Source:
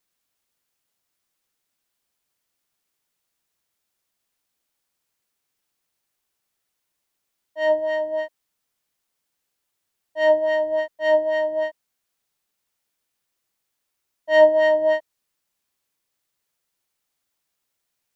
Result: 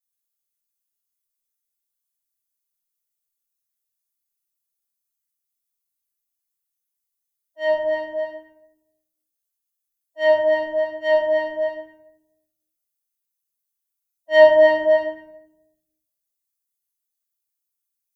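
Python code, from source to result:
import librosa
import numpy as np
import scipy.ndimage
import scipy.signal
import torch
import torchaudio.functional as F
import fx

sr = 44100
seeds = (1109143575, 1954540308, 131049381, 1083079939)

y = fx.bin_expand(x, sr, power=1.5)
y = fx.room_shoebox(y, sr, seeds[0], volume_m3=230.0, walls='mixed', distance_m=2.3)
y = y * 10.0 ** (-3.0 / 20.0)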